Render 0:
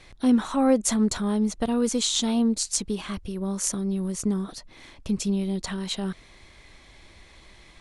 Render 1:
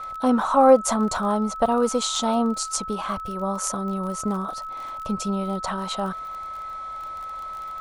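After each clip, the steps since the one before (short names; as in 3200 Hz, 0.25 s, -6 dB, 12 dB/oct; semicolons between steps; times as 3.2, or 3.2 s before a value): whine 1300 Hz -42 dBFS; band shelf 860 Hz +13 dB; crackle 33/s -31 dBFS; gain -1.5 dB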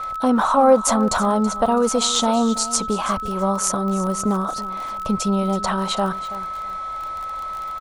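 in parallel at -2.5 dB: negative-ratio compressor -24 dBFS; on the sum: feedback echo 0.328 s, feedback 20%, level -15.5 dB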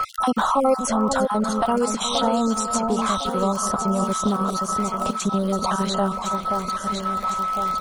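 random spectral dropouts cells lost 32%; echo with dull and thin repeats by turns 0.528 s, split 1300 Hz, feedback 68%, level -7 dB; three-band squash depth 70%; gain -2 dB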